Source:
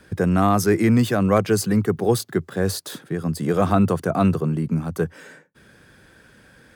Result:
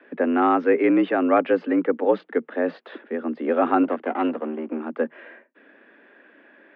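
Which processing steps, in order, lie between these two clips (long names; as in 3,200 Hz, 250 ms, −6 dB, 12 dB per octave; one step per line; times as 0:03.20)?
0:03.83–0:04.80: gain on one half-wave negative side −12 dB
single-sideband voice off tune +73 Hz 180–2,800 Hz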